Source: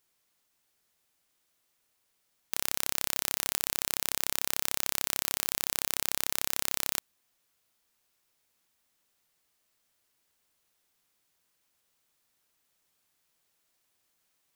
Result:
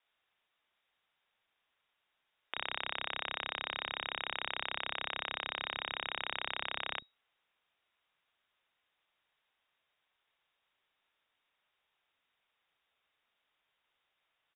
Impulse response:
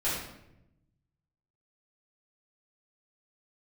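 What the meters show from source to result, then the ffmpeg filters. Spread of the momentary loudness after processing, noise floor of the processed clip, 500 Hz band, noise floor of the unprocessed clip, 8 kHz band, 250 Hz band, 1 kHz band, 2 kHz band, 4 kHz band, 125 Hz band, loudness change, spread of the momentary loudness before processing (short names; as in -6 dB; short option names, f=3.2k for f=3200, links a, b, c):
2 LU, -83 dBFS, -3.0 dB, -76 dBFS, under -40 dB, -8.5 dB, +0.5 dB, +1.0 dB, -2.5 dB, -8.5 dB, -8.5 dB, 2 LU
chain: -filter_complex "[0:a]lowpass=f=3.2k:t=q:w=0.5098,lowpass=f=3.2k:t=q:w=0.6013,lowpass=f=3.2k:t=q:w=0.9,lowpass=f=3.2k:t=q:w=2.563,afreqshift=-3800,acrossover=split=250[a][b];[a]adelay=40[c];[c][b]amix=inputs=2:normalize=0,volume=1dB"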